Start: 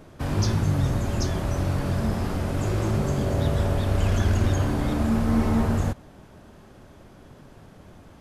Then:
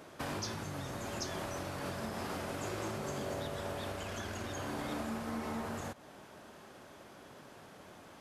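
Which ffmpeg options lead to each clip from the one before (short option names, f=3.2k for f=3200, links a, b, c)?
-af "acompressor=threshold=-28dB:ratio=6,highpass=f=590:p=1,volume=1dB"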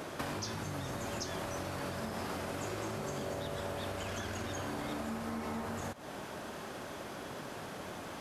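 -af "acompressor=threshold=-48dB:ratio=4,volume=10.5dB"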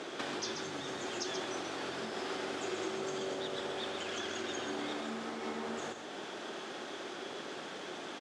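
-af "highpass=290,equalizer=f=370:t=q:w=4:g=5,equalizer=f=600:t=q:w=4:g=-4,equalizer=f=1k:t=q:w=4:g=-5,equalizer=f=3.4k:t=q:w=4:g=6,lowpass=f=7.6k:w=0.5412,lowpass=f=7.6k:w=1.3066,aecho=1:1:134:0.473,volume=1dB"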